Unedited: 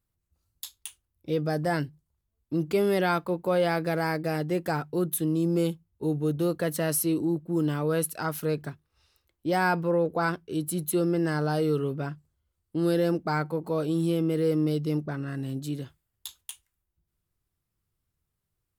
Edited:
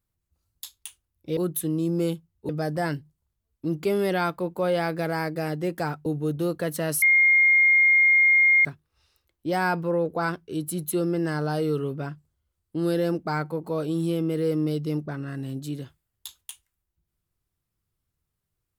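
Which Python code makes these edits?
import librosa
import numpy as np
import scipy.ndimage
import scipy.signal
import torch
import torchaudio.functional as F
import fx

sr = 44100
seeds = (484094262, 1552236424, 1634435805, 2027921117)

y = fx.edit(x, sr, fx.move(start_s=4.94, length_s=1.12, to_s=1.37),
    fx.bleep(start_s=7.02, length_s=1.63, hz=2130.0, db=-14.5), tone=tone)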